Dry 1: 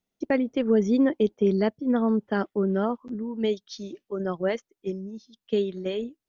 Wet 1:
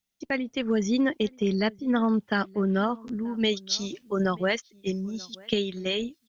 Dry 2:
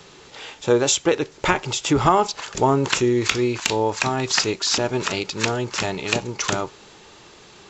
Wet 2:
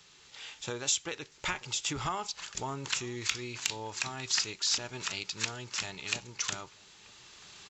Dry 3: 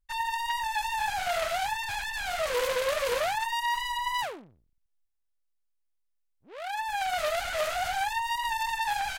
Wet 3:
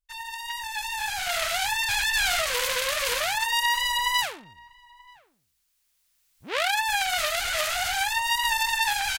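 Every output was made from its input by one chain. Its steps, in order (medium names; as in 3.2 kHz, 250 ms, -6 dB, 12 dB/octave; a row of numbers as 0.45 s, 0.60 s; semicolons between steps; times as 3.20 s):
recorder AGC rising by 7.2 dB/s; amplifier tone stack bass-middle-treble 5-5-5; echo from a far wall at 160 m, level -23 dB; peak normalisation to -9 dBFS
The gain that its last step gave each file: +10.5 dB, -2.5 dB, +5.0 dB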